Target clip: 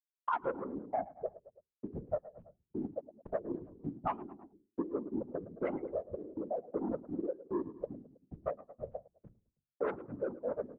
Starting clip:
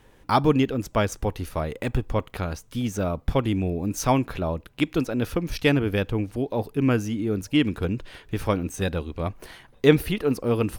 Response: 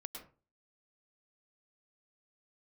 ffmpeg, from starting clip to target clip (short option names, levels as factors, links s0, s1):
-filter_complex "[0:a]afftfilt=real='re*gte(hypot(re,im),0.501)':imag='im*gte(hypot(re,im),0.501)':win_size=1024:overlap=0.75,asoftclip=type=tanh:threshold=0.158,asetrate=49501,aresample=44100,atempo=0.890899,equalizer=f=1400:t=o:w=2.1:g=9,agate=range=0.0178:threshold=0.00794:ratio=16:detection=peak,highpass=320,lowpass=2700,bandreject=f=50:t=h:w=6,bandreject=f=100:t=h:w=6,bandreject=f=150:t=h:w=6,bandreject=f=200:t=h:w=6,bandreject=f=250:t=h:w=6,bandreject=f=300:t=h:w=6,bandreject=f=350:t=h:w=6,bandreject=f=400:t=h:w=6,bandreject=f=450:t=h:w=6,asplit=2[s0][s1];[s1]adelay=107,lowpass=f=1400:p=1,volume=0.106,asplit=2[s2][s3];[s3]adelay=107,lowpass=f=1400:p=1,volume=0.45,asplit=2[s4][s5];[s5]adelay=107,lowpass=f=1400:p=1,volume=0.45[s6];[s0][s2][s4][s6]amix=inputs=4:normalize=0,flanger=delay=0.7:depth=5.1:regen=80:speed=0.62:shape=triangular,aemphasis=mode=production:type=50kf,acompressor=threshold=0.00631:ratio=5,afftfilt=real='hypot(re,im)*cos(2*PI*random(0))':imag='hypot(re,im)*sin(2*PI*random(1))':win_size=512:overlap=0.75,volume=5.62"